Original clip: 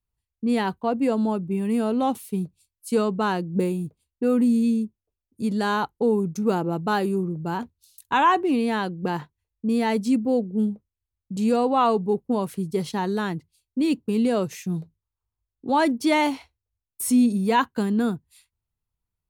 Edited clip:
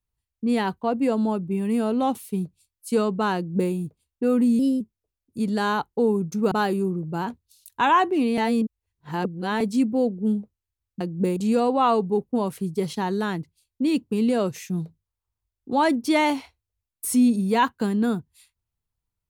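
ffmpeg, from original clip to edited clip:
-filter_complex "[0:a]asplit=8[a][b][c][d][e][f][g][h];[a]atrim=end=4.594[i];[b]atrim=start=4.59:end=4.84,asetpts=PTS-STARTPTS,asetrate=51156,aresample=44100,atrim=end_sample=9504,asetpts=PTS-STARTPTS[j];[c]atrim=start=4.836:end=6.552[k];[d]atrim=start=6.838:end=8.702[l];[e]atrim=start=8.698:end=9.932,asetpts=PTS-STARTPTS,areverse[m];[f]atrim=start=9.928:end=11.332[n];[g]atrim=start=3.358:end=3.722[o];[h]atrim=start=11.328[p];[i][j]acrossfade=d=0.004:c1=hsin:c2=hsin[q];[q][k]acrossfade=d=0.004:c1=hsin:c2=hsin[r];[r][l]acrossfade=d=0.004:c1=hsin:c2=hsin[s];[s][m]acrossfade=d=0.004:c1=hsin:c2=hsin[t];[t][n]acrossfade=d=0.004:c1=hsin:c2=hsin[u];[u][o]acrossfade=d=0.004:c1=hsin:c2=hsin[v];[v][p]acrossfade=d=0.004:c1=hsin:c2=hsin"

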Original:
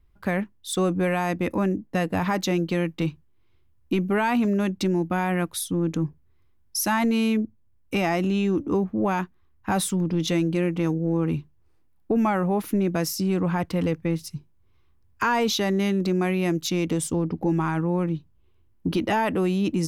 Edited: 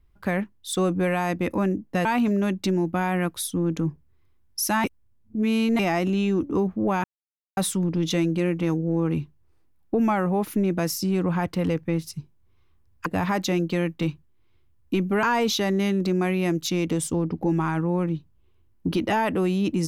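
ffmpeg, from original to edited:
-filter_complex "[0:a]asplit=8[a][b][c][d][e][f][g][h];[a]atrim=end=2.052[i];[b]atrim=start=4.218:end=7.012[j];[c]atrim=start=7.008:end=7.962,asetpts=PTS-STARTPTS,areverse[k];[d]atrim=start=7.958:end=9.21,asetpts=PTS-STARTPTS,afade=t=out:st=1.248:d=0.004:c=hsin[l];[e]atrim=start=9.21:end=9.74,asetpts=PTS-STARTPTS,volume=0[m];[f]atrim=start=9.74:end=15.232,asetpts=PTS-STARTPTS,afade=t=in:d=0.004:c=hsin[n];[g]atrim=start=2.048:end=4.222[o];[h]atrim=start=15.228[p];[i][j]acrossfade=d=0.004:c1=hsin:c2=hsin[q];[q][k]acrossfade=d=0.004:c1=hsin:c2=hsin[r];[l][m][n]concat=n=3:v=0:a=1[s];[r][s]acrossfade=d=0.004:c1=hsin:c2=hsin[t];[t][o]acrossfade=d=0.004:c1=hsin:c2=hsin[u];[u][p]acrossfade=d=0.004:c1=hsin:c2=hsin"

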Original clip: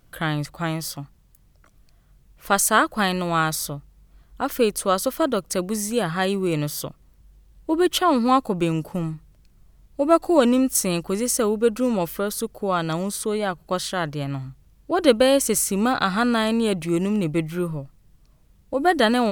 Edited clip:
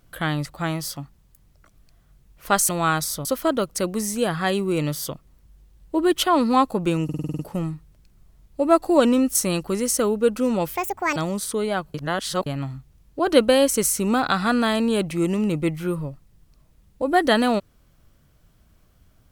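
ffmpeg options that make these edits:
-filter_complex "[0:a]asplit=14[a][b][c][d][e][f][g][h][i][j][k][l][m][n];[a]atrim=end=2.692[o];[b]atrim=start=3.198:end=3.762[p];[c]atrim=start=4.998:end=8.842[q];[d]atrim=start=8.788:end=8.842[r];[e]atrim=start=8.788:end=8.842[s];[f]atrim=start=8.788:end=8.842[t];[g]atrim=start=8.788:end=8.842[u];[h]atrim=start=8.788:end=8.842[v];[i]atrim=start=8.788:end=8.842[w];[j]atrim=start=8.788:end=12.154[x];[k]atrim=start=12.15:end=12.88,asetpts=PTS-STARTPTS,asetrate=78057,aresample=44100,atrim=end_sample=18188,asetpts=PTS-STARTPTS[y];[l]atrim=start=12.876:end=13.662[z];[m]atrim=start=13.658:end=14.182,asetpts=PTS-STARTPTS,areverse[aa];[n]atrim=start=14.178[ab];[o][p]acrossfade=d=0.004:c1=hsin:c2=hsin[ac];[ac][q]acrossfade=d=0.004:c1=hsin:c2=hsin[ad];[ad][r]acrossfade=d=0.004:c1=hsin:c2=hsin[ae];[ae][s]acrossfade=d=0.004:c1=hsin:c2=hsin[af];[af][t]acrossfade=d=0.004:c1=hsin:c2=hsin[ag];[ag][u]acrossfade=d=0.004:c1=hsin:c2=hsin[ah];[ah][v]acrossfade=d=0.004:c1=hsin:c2=hsin[ai];[ai][w]acrossfade=d=0.004:c1=hsin:c2=hsin[aj];[aj][x]acrossfade=d=0.004:c1=hsin:c2=hsin[ak];[ak][y]acrossfade=d=0.004:c1=hsin:c2=hsin[al];[al][z]acrossfade=d=0.004:c1=hsin:c2=hsin[am];[am][aa]acrossfade=d=0.004:c1=hsin:c2=hsin[an];[an][ab]acrossfade=d=0.004:c1=hsin:c2=hsin"

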